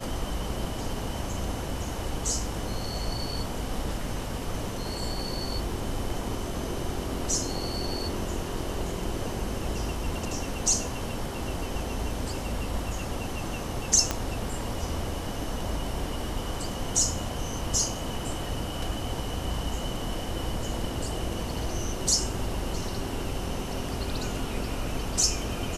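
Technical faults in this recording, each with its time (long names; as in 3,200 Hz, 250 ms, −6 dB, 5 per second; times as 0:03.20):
0:14.11: click −10 dBFS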